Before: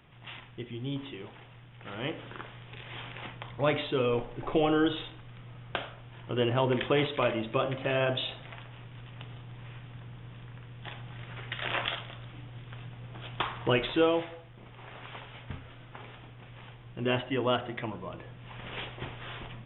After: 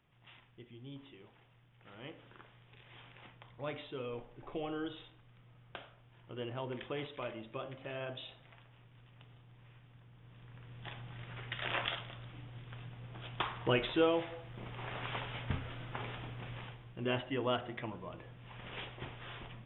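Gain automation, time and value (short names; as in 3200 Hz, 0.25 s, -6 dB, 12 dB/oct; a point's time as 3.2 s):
10.11 s -14 dB
10.75 s -4.5 dB
14.17 s -4.5 dB
14.58 s +4 dB
16.52 s +4 dB
16.94 s -6 dB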